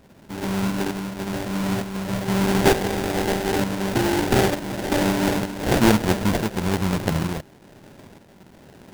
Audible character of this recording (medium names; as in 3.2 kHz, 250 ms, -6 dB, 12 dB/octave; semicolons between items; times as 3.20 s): a buzz of ramps at a fixed pitch in blocks of 16 samples; tremolo saw up 1.1 Hz, depth 60%; aliases and images of a low sample rate 1.2 kHz, jitter 20%